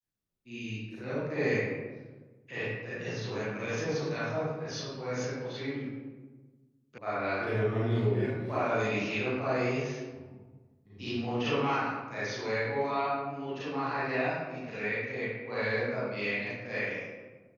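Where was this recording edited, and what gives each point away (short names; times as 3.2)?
6.98 sound cut off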